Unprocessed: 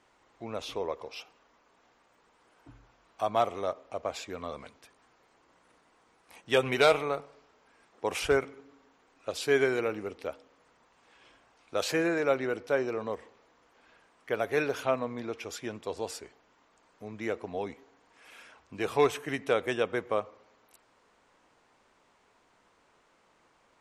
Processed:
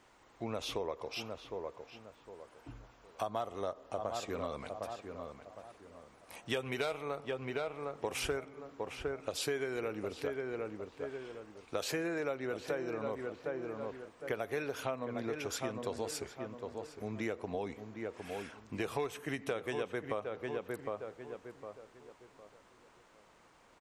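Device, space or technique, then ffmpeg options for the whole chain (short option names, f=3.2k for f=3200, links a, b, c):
ASMR close-microphone chain: -filter_complex "[0:a]asettb=1/sr,asplit=3[a][b][c];[a]atrim=end=3.234[d];[b]atrim=start=3.23:end=4.24,asetpts=PTS-STARTPTS,afade=t=in:d=0.004:c=qsin,afade=t=out:st=1.006:d=0.004:c=qsin,bandreject=f=2.3k:w=5.2[e];[c]atrim=start=4.236[f];[d][e]acrossfade=d=0.004:c1=hsin:c2=qsin[g];[g][f]acrossfade=d=0.004:c1=qsin:c2=hsin,lowshelf=f=180:g=4,asplit=2[h][i];[i]adelay=758,lowpass=f=1.9k:p=1,volume=-9dB,asplit=2[j][k];[k]adelay=758,lowpass=f=1.9k:p=1,volume=0.32,asplit=2[l][m];[m]adelay=758,lowpass=f=1.9k:p=1,volume=0.32,asplit=2[n][o];[o]adelay=758,lowpass=f=1.9k:p=1,volume=0.32[p];[h][j][l][n][p]amix=inputs=5:normalize=0,acompressor=threshold=-35dB:ratio=6,highshelf=f=9.9k:g=6,volume=1.5dB"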